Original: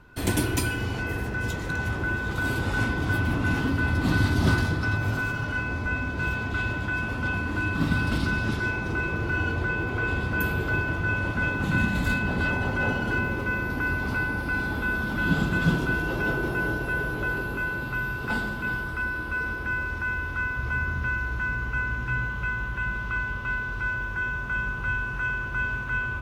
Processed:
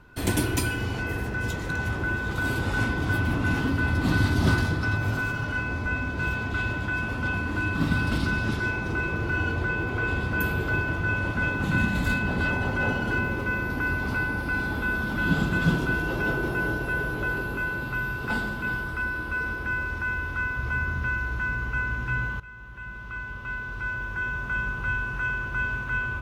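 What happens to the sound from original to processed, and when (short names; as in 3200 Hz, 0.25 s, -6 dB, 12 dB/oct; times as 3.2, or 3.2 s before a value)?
22.4–24.45 fade in, from -18 dB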